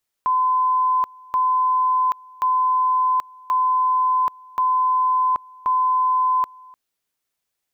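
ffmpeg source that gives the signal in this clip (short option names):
-f lavfi -i "aevalsrc='pow(10,(-15.5-25.5*gte(mod(t,1.08),0.78))/20)*sin(2*PI*1020*t)':d=6.48:s=44100"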